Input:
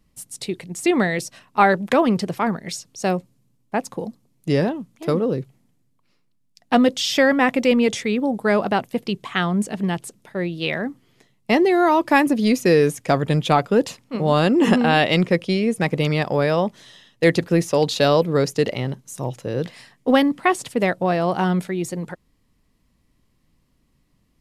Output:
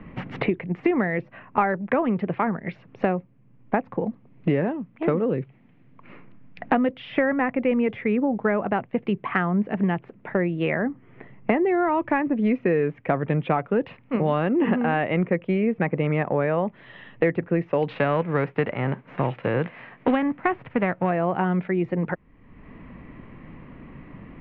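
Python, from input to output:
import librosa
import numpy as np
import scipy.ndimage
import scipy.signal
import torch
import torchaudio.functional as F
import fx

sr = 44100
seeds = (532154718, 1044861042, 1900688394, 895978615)

y = fx.envelope_flatten(x, sr, power=0.6, at=(17.88, 21.09), fade=0.02)
y = scipy.signal.sosfilt(scipy.signal.butter(6, 2400.0, 'lowpass', fs=sr, output='sos'), y)
y = fx.band_squash(y, sr, depth_pct=100)
y = y * librosa.db_to_amplitude(-4.5)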